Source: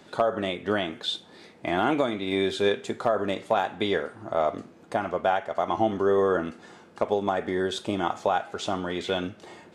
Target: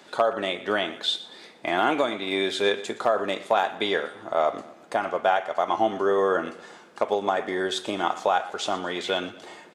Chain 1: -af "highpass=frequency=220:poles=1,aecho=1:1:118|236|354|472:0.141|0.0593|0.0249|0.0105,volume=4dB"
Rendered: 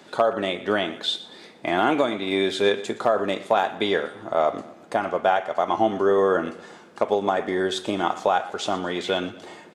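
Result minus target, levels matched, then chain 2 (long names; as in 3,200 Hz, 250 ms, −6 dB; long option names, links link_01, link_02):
250 Hz band +2.5 dB
-af "highpass=frequency=540:poles=1,aecho=1:1:118|236|354|472:0.141|0.0593|0.0249|0.0105,volume=4dB"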